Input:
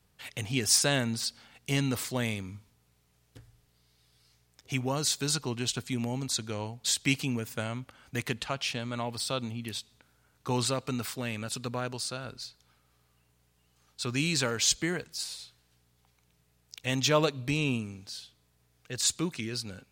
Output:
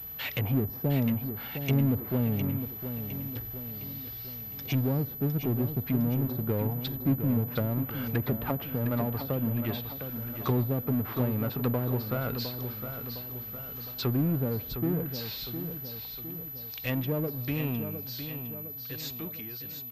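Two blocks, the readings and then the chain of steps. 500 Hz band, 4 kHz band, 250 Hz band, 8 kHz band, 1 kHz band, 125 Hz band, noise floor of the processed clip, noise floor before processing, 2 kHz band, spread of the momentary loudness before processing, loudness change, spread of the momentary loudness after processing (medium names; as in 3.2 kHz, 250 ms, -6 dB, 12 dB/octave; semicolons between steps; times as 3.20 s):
+0.5 dB, -10.0 dB, +4.5 dB, under -20 dB, -2.5 dB, +6.5 dB, -41 dBFS, -69 dBFS, -6.5 dB, 16 LU, -0.5 dB, 9 LU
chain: fade out at the end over 6.26 s; low-pass that closes with the level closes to 340 Hz, closed at -28.5 dBFS; power-law waveshaper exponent 0.7; on a send: feedback delay 709 ms, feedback 52%, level -9 dB; on the sum: class-D stage that switches slowly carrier 12 kHz; trim +3 dB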